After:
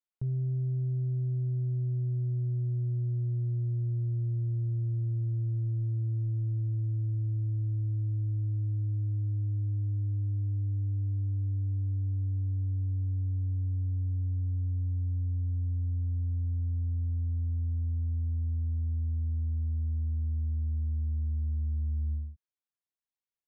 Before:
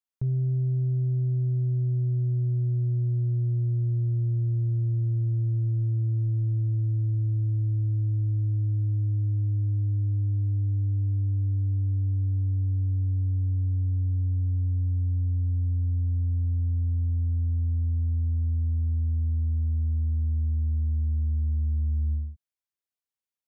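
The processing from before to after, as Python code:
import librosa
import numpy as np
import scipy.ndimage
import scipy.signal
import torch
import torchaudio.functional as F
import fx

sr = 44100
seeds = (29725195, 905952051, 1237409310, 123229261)

y = fx.lowpass(x, sr, hz=3400.0, slope=6)
y = y * 10.0 ** (-5.0 / 20.0)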